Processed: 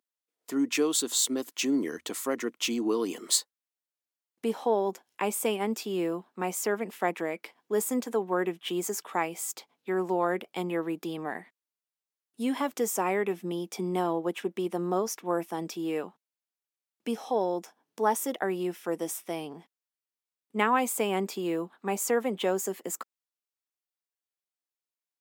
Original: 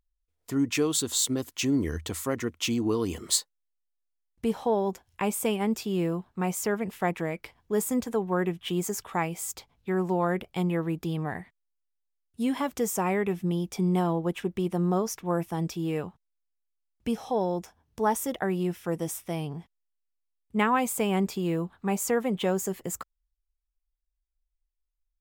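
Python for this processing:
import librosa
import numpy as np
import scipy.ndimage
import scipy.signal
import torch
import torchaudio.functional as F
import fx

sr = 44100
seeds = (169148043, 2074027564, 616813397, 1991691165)

y = scipy.signal.sosfilt(scipy.signal.butter(4, 240.0, 'highpass', fs=sr, output='sos'), x)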